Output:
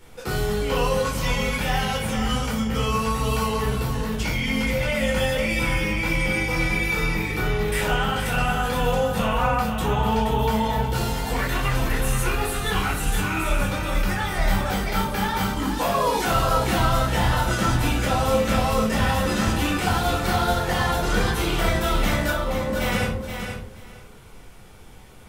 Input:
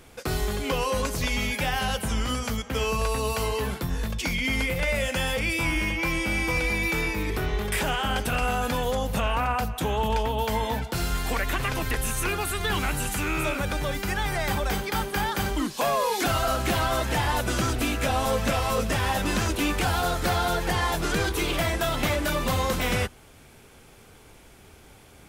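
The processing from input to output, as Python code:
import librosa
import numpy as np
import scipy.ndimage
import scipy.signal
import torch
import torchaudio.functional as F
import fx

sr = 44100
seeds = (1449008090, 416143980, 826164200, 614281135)

y = fx.bandpass_q(x, sr, hz=fx.line((22.3, 880.0), (22.74, 220.0)), q=1.0, at=(22.3, 22.74), fade=0.02)
y = fx.echo_feedback(y, sr, ms=476, feedback_pct=17, wet_db=-7.5)
y = fx.room_shoebox(y, sr, seeds[0], volume_m3=410.0, walls='furnished', distance_m=4.4)
y = y * 10.0 ** (-5.5 / 20.0)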